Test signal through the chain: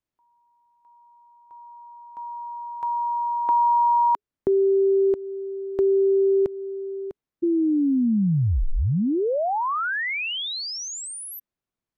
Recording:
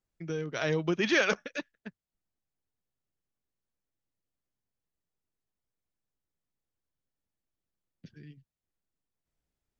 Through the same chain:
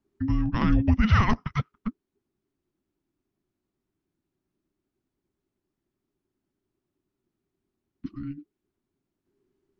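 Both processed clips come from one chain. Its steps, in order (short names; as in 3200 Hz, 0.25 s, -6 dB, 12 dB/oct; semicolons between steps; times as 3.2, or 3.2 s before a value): HPF 380 Hz 6 dB/oct; tilt -4.5 dB/oct; in parallel at +3 dB: compressor, threshold -34 dBFS; on the sum: frequency shift -430 Hz; gain +3 dB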